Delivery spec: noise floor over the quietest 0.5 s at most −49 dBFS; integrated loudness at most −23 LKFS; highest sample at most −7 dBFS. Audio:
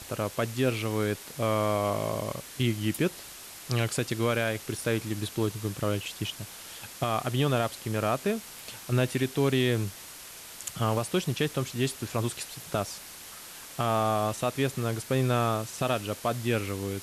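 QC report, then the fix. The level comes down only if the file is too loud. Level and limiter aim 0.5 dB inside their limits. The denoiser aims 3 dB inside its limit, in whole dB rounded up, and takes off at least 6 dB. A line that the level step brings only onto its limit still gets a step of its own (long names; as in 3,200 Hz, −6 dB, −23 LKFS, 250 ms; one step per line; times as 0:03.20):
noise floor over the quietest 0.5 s −45 dBFS: out of spec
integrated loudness −29.5 LKFS: in spec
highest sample −13.5 dBFS: in spec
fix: broadband denoise 7 dB, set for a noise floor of −45 dBFS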